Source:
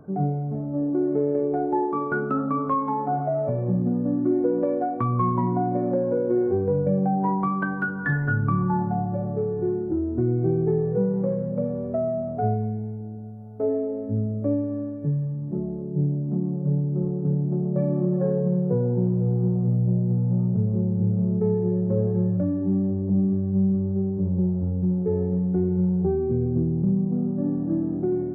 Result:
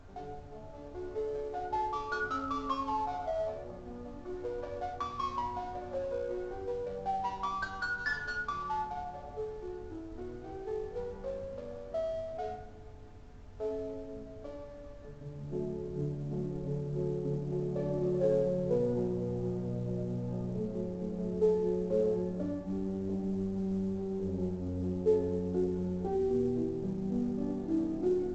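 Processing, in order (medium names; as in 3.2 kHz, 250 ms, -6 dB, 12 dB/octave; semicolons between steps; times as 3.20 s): median filter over 15 samples; high-pass 840 Hz 12 dB/octave, from 15.21 s 320 Hz; added noise brown -47 dBFS; reverberation RT60 0.70 s, pre-delay 5 ms, DRR 1.5 dB; trim -5 dB; µ-law 128 kbps 16 kHz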